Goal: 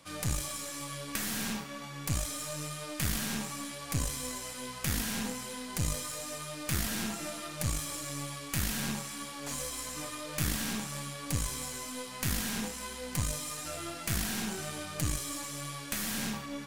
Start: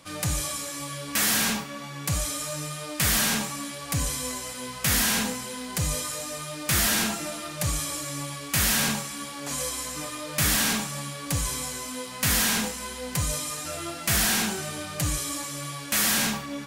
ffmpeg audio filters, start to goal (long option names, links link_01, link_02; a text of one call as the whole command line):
ffmpeg -i in.wav -filter_complex "[0:a]acrossover=split=330[link_01][link_02];[link_02]acompressor=threshold=-29dB:ratio=6[link_03];[link_01][link_03]amix=inputs=2:normalize=0,aeval=exprs='0.178*(cos(1*acos(clip(val(0)/0.178,-1,1)))-cos(1*PI/2))+0.0631*(cos(2*acos(clip(val(0)/0.178,-1,1)))-cos(2*PI/2))+0.0141*(cos(3*acos(clip(val(0)/0.178,-1,1)))-cos(3*PI/2))+0.00112*(cos(6*acos(clip(val(0)/0.178,-1,1)))-cos(6*PI/2))':channel_layout=same,volume=-3dB" out.wav